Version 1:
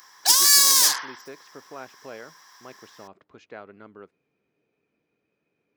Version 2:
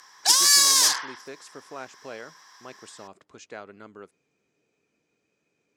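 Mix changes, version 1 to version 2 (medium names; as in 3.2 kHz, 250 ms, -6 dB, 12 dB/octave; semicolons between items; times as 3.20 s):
speech: remove distance through air 230 m; master: add low-pass 9.6 kHz 12 dB/octave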